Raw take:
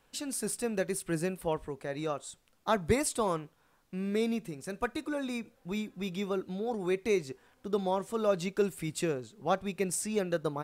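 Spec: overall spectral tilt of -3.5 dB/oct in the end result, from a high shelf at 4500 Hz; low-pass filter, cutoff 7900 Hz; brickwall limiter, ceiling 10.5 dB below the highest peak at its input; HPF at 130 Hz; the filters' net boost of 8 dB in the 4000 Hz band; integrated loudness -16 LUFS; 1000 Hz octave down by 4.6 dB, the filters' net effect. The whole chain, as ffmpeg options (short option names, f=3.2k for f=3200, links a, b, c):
-af "highpass=130,lowpass=7.9k,equalizer=f=1k:t=o:g=-7,equalizer=f=4k:t=o:g=5.5,highshelf=f=4.5k:g=9,volume=19.5dB,alimiter=limit=-4dB:level=0:latency=1"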